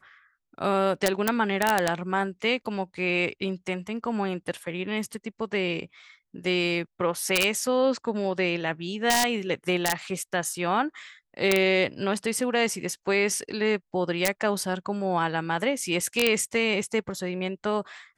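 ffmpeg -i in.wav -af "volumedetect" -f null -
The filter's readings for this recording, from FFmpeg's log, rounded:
mean_volume: -27.1 dB
max_volume: -11.8 dB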